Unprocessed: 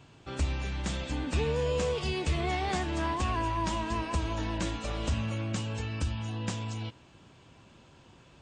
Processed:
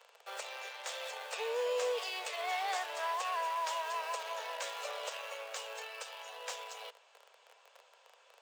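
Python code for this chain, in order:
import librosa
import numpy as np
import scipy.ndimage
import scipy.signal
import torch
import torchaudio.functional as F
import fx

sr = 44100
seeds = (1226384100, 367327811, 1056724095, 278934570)

p1 = fx.schmitt(x, sr, flips_db=-47.0)
p2 = x + F.gain(torch.from_numpy(p1), -11.5).numpy()
p3 = scipy.signal.sosfilt(scipy.signal.butter(12, 460.0, 'highpass', fs=sr, output='sos'), p2)
y = F.gain(torch.from_numpy(p3), -3.5).numpy()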